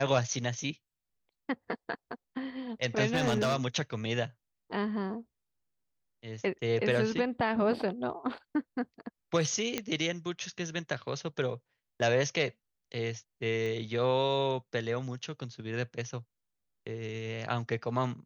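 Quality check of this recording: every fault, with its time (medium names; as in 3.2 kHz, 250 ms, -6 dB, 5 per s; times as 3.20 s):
3.13–3.55 s: clipped -23 dBFS
9.78 s: pop -14 dBFS
13.66 s: pop -26 dBFS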